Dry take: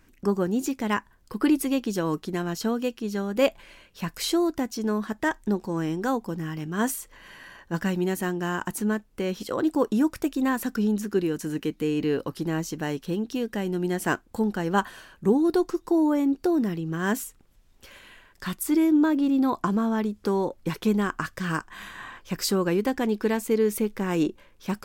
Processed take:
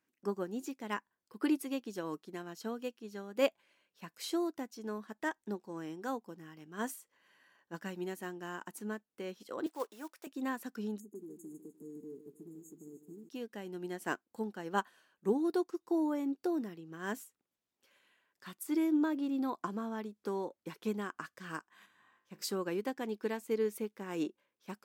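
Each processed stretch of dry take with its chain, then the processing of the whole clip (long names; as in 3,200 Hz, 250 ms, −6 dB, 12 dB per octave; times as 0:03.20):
0:09.66–0:10.27: one scale factor per block 5 bits + high-pass filter 530 Hz
0:11.00–0:13.29: linear-phase brick-wall band-stop 470–6,400 Hz + downward compressor 4 to 1, threshold −29 dBFS + feedback echo at a low word length 151 ms, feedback 55%, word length 10 bits, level −8.5 dB
0:21.86–0:22.42: low-shelf EQ 250 Hz +9 dB + tuned comb filter 52 Hz, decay 0.55 s, mix 70%
whole clip: high-pass filter 230 Hz 12 dB per octave; expander for the loud parts 1.5 to 1, over −44 dBFS; level −7 dB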